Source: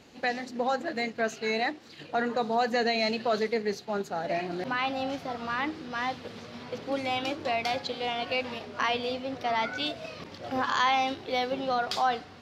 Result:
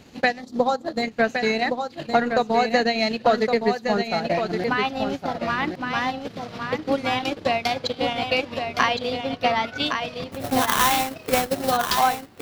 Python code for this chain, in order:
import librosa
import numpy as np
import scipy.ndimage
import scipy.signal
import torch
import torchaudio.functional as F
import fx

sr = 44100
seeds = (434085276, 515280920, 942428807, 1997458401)

p1 = fx.spec_box(x, sr, start_s=0.4, length_s=0.63, low_hz=1400.0, high_hz=3100.0, gain_db=-9)
p2 = fx.sample_hold(p1, sr, seeds[0], rate_hz=4800.0, jitter_pct=20, at=(10.31, 11.7), fade=0.02)
p3 = fx.high_shelf(p2, sr, hz=7700.0, db=10.0)
p4 = fx.transient(p3, sr, attack_db=7, sustain_db=-11)
p5 = fx.bass_treble(p4, sr, bass_db=6, treble_db=-3)
p6 = p5 + fx.echo_single(p5, sr, ms=1115, db=-6.0, dry=0)
y = p6 * 10.0 ** (3.5 / 20.0)